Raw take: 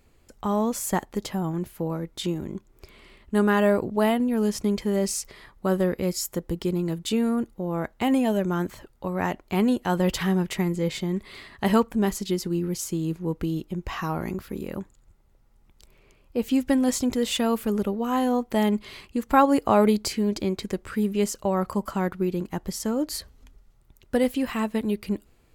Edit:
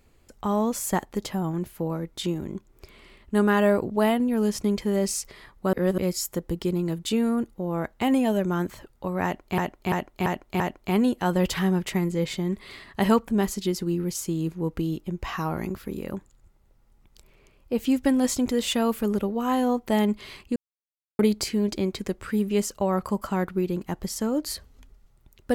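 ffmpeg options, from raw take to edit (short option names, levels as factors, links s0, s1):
-filter_complex "[0:a]asplit=9[s0][s1][s2][s3][s4][s5][s6][s7][s8];[s0]atrim=end=5.732[s9];[s1]atrim=start=5.728:end=5.982,asetpts=PTS-STARTPTS,areverse[s10];[s2]atrim=start=5.978:end=9.582[s11];[s3]atrim=start=9.238:end=9.582[s12];[s4]atrim=start=9.238:end=9.582[s13];[s5]atrim=start=9.238:end=9.582[s14];[s6]atrim=start=9.238:end=19.2,asetpts=PTS-STARTPTS,afade=t=out:st=9.958:d=0.004:c=hsin[s15];[s7]atrim=start=19.2:end=19.83,asetpts=PTS-STARTPTS,volume=0[s16];[s8]atrim=start=19.83,asetpts=PTS-STARTPTS,afade=t=in:d=0.004:c=hsin[s17];[s9][s10]acrossfade=d=0.004:c1=hsin:c2=hsin[s18];[s18][s11]acrossfade=d=0.004:c1=hsin:c2=hsin[s19];[s19][s12]acrossfade=d=0.004:c1=hsin:c2=hsin[s20];[s20][s13]acrossfade=d=0.004:c1=hsin:c2=hsin[s21];[s21][s14]acrossfade=d=0.004:c1=hsin:c2=hsin[s22];[s15][s16][s17]concat=n=3:v=0:a=1[s23];[s22][s23]acrossfade=d=0.004:c1=hsin:c2=hsin"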